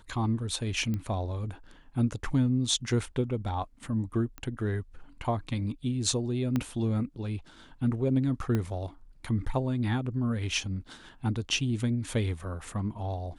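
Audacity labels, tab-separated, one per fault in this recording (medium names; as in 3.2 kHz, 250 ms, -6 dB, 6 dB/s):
0.940000	0.940000	pop -21 dBFS
4.380000	4.380000	pop -25 dBFS
6.560000	6.560000	pop -16 dBFS
8.550000	8.550000	pop -17 dBFS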